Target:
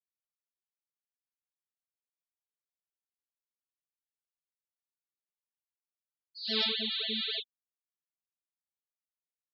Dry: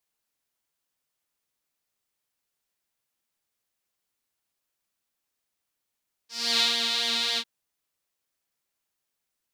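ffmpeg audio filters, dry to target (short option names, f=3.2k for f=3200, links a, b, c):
-af "asetrate=41625,aresample=44100,atempo=1.05946,afftfilt=real='re*gte(hypot(re,im),0.0794)':imag='im*gte(hypot(re,im),0.0794)':win_size=1024:overlap=0.75,lowshelf=f=630:t=q:w=1.5:g=9.5,volume=-5.5dB"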